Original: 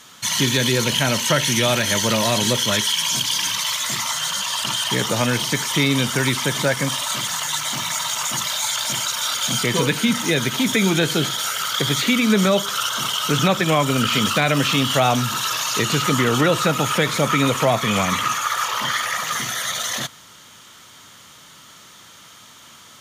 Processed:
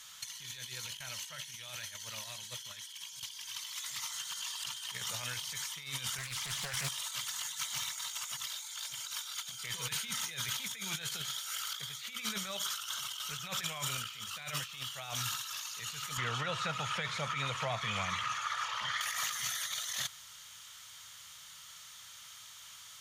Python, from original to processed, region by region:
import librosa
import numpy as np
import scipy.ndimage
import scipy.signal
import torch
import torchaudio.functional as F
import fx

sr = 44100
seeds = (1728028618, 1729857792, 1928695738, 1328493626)

y = fx.chain(x, sr, fx.low_shelf(hz=160.0, db=5.5),
    fx.doppler_dist(depth_ms=0.41), at=(6.18, 6.88))
y = fx.chain(y, sr, fx.highpass(hz=44.0, slope=12),
    fx.spacing_loss(db_at_10k=20), at=(16.17, 19.01))
y = fx.tone_stack(y, sr, knobs='10-0-10')
y = fx.over_compress(y, sr, threshold_db=-30.0, ratio=-0.5)
y = fx.low_shelf(y, sr, hz=320.0, db=2.5)
y = y * librosa.db_to_amplitude(-8.5)